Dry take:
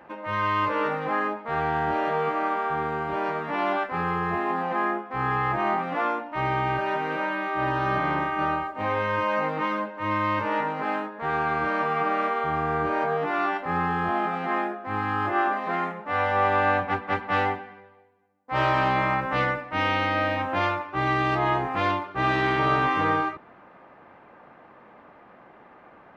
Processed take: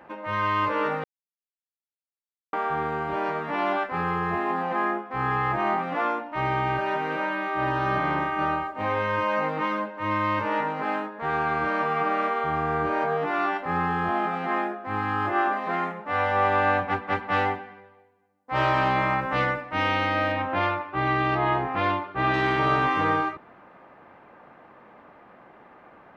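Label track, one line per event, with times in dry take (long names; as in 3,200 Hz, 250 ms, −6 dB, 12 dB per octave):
1.040000	2.530000	silence
20.320000	22.340000	low-pass filter 4,100 Hz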